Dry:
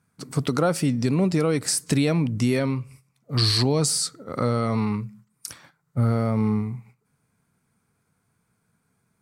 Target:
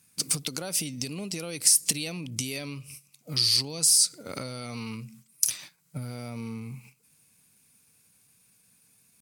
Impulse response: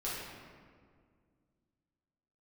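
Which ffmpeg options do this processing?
-af "acompressor=threshold=-31dB:ratio=8,aexciter=amount=4.1:drive=7.5:freq=2.1k,asetrate=46722,aresample=44100,atempo=0.943874,volume=-2.5dB"

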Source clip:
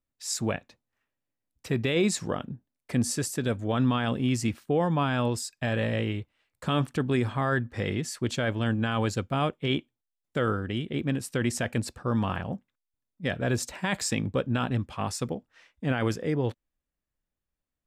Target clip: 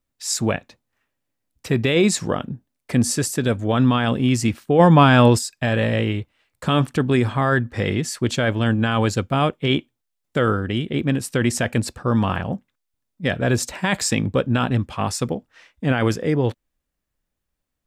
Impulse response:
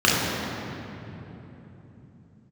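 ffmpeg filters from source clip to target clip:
-filter_complex "[0:a]asplit=3[a][b][c];[a]afade=t=out:st=4.78:d=0.02[d];[b]acontrast=68,afade=t=in:st=4.78:d=0.02,afade=t=out:st=5.37:d=0.02[e];[c]afade=t=in:st=5.37:d=0.02[f];[d][e][f]amix=inputs=3:normalize=0,volume=7.5dB"

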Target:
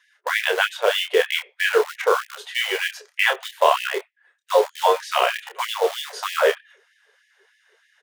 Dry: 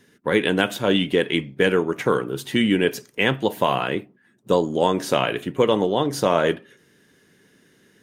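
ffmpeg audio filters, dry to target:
-filter_complex "[0:a]highpass=f=260:w=0.5412,highpass=f=260:w=1.3066,aemphasis=mode=reproduction:type=50fm,asplit=2[a][b];[b]acrusher=bits=3:mix=0:aa=0.000001,volume=-9dB[c];[a][c]amix=inputs=2:normalize=0,asplit=2[d][e];[e]adelay=28,volume=-6dB[f];[d][f]amix=inputs=2:normalize=0,afftfilt=real='re*gte(b*sr/1024,370*pow(1700/370,0.5+0.5*sin(2*PI*3.2*pts/sr)))':imag='im*gte(b*sr/1024,370*pow(1700/370,0.5+0.5*sin(2*PI*3.2*pts/sr)))':win_size=1024:overlap=0.75,volume=1dB"

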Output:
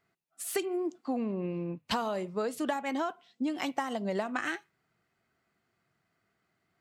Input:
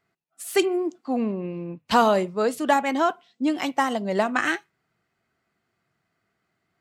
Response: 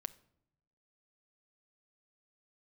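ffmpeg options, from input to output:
-af "acompressor=threshold=-26dB:ratio=12,volume=-2dB"

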